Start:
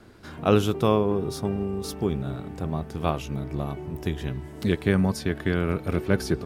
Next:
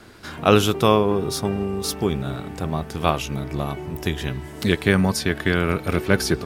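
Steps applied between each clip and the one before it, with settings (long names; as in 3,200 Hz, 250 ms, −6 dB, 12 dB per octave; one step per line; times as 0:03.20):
tilt shelving filter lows −4 dB, about 900 Hz
level +6.5 dB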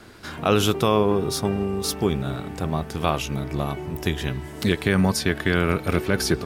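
boost into a limiter +6 dB
level −6 dB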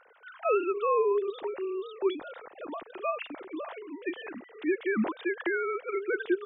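three sine waves on the formant tracks
level −8 dB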